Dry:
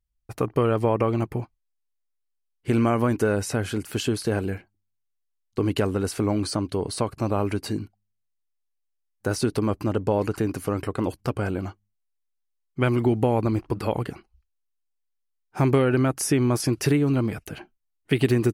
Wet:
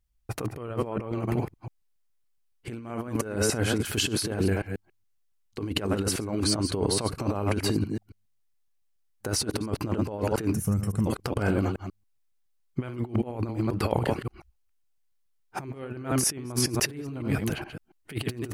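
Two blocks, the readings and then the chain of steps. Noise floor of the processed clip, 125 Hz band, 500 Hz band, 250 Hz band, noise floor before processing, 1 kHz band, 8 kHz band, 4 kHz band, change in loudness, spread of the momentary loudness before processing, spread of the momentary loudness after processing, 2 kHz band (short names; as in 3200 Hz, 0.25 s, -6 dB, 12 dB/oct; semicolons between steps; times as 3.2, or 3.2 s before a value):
-69 dBFS, -4.0 dB, -6.0 dB, -4.5 dB, -76 dBFS, -5.5 dB, +3.5 dB, +3.5 dB, -4.0 dB, 12 LU, 13 LU, -2.0 dB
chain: reverse delay 0.14 s, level -8.5 dB; spectral gain 10.54–11.07, 230–5200 Hz -16 dB; negative-ratio compressor -27 dBFS, ratio -0.5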